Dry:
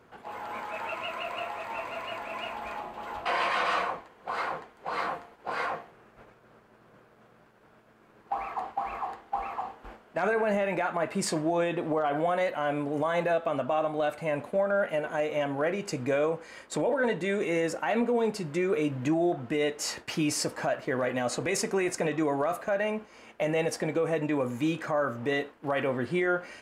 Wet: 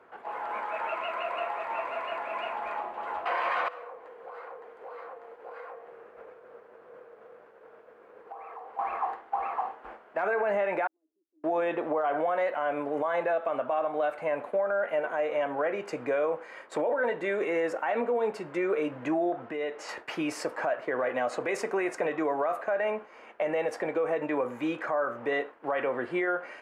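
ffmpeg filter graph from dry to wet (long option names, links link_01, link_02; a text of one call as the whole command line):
ffmpeg -i in.wav -filter_complex "[0:a]asettb=1/sr,asplit=3[link_01][link_02][link_03];[link_01]atrim=end=3.684[link_04];[link_02]atrim=start=3.68:end=8.79,asetpts=PTS-STARTPTS,afade=type=in:duration=0.004:curve=qsin,afade=type=out:start_time=5.106:duration=0.004:curve=qsin,equalizer=frequency=480:width=4.5:gain=14.5,acompressor=threshold=-44dB:ratio=6:attack=3.2:release=140:knee=1:detection=peak,acrusher=bits=8:mode=log:mix=0:aa=0.000001[link_05];[link_03]atrim=start=8.786[link_06];[link_04][link_05]acrossfade=duration=0.004:curve1=hsin:curve2=qsin[link_07];[link_07][link_06]acrossfade=duration=0.004:curve1=qsin:curve2=hsin,asettb=1/sr,asplit=3[link_08][link_09][link_10];[link_08]atrim=end=10.874[link_11];[link_09]atrim=start=10.87:end=11.44,asetpts=PTS-STARTPTS,afade=type=in:duration=0.004:curve=qsin,afade=type=out:start_time=0.566:duration=0.004:curve=qsin,aderivative,acompressor=threshold=-50dB:ratio=2:attack=3.2:release=140:knee=1:detection=peak,asuperpass=centerf=300:order=4:qfactor=5.1[link_12];[link_10]atrim=start=11.436[link_13];[link_11][link_12]acrossfade=duration=0.004:curve1=hsin:curve2=qsin[link_14];[link_14][link_13]acrossfade=duration=0.004:curve1=qsin:curve2=hsin,asettb=1/sr,asplit=3[link_15][link_16][link_17];[link_15]atrim=end=19.454[link_18];[link_16]atrim=start=19.45:end=19.89,asetpts=PTS-STARTPTS,afade=type=in:duration=0.004:curve=qsin,afade=type=out:start_time=0.436:duration=0.004:curve=qsin,lowpass=7200,acompressor=threshold=-32dB:ratio=2.5:attack=3.2:release=140:knee=1:detection=peak[link_19];[link_17]atrim=start=19.886[link_20];[link_18][link_19]acrossfade=duration=0.004:curve1=hsin:curve2=qsin[link_21];[link_21][link_20]acrossfade=duration=0.004:curve1=qsin:curve2=hsin,acrossover=split=350 2400:gain=0.126 1 0.158[link_22][link_23][link_24];[link_22][link_23][link_24]amix=inputs=3:normalize=0,alimiter=limit=-24dB:level=0:latency=1:release=89,volume=4dB" out.wav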